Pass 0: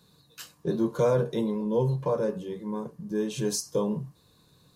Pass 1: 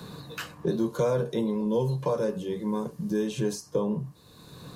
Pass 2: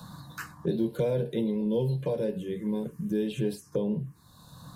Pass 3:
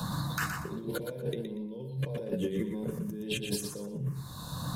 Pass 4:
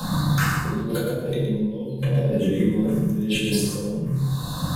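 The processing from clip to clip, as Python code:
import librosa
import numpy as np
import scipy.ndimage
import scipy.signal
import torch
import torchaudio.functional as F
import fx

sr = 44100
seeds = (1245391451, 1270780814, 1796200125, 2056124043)

y1 = fx.band_squash(x, sr, depth_pct=70)
y2 = fx.env_phaser(y1, sr, low_hz=340.0, high_hz=1200.0, full_db=-25.0)
y3 = fx.over_compress(y2, sr, threshold_db=-39.0, ratio=-1.0)
y3 = fx.echo_feedback(y3, sr, ms=119, feedback_pct=25, wet_db=-6.5)
y3 = F.gain(torch.from_numpy(y3), 2.5).numpy()
y4 = fx.room_shoebox(y3, sr, seeds[0], volume_m3=370.0, walls='mixed', distance_m=2.1)
y4 = F.gain(torch.from_numpy(y4), 4.0).numpy()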